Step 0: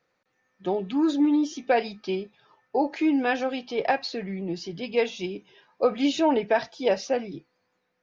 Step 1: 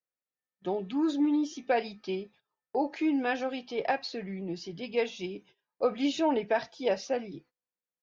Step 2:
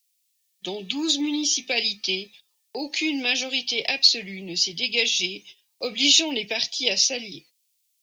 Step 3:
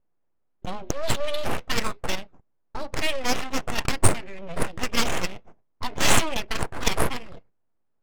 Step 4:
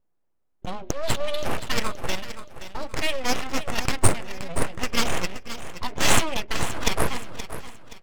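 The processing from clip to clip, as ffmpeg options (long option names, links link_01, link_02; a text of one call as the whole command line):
ffmpeg -i in.wav -af "agate=range=-23dB:threshold=-50dB:ratio=16:detection=peak,volume=-5dB" out.wav
ffmpeg -i in.wav -filter_complex "[0:a]acrossover=split=280|480|1900[link_01][link_02][link_03][link_04];[link_03]acompressor=threshold=-39dB:ratio=6[link_05];[link_01][link_02][link_05][link_04]amix=inputs=4:normalize=0,aexciter=amount=11.5:drive=5.9:freq=2300" out.wav
ffmpeg -i in.wav -af "aeval=exprs='abs(val(0))':channel_layout=same,adynamicsmooth=sensitivity=5:basefreq=780,volume=3.5dB" out.wav
ffmpeg -i in.wav -af "aecho=1:1:524|1048|1572|2096:0.251|0.0904|0.0326|0.0117" out.wav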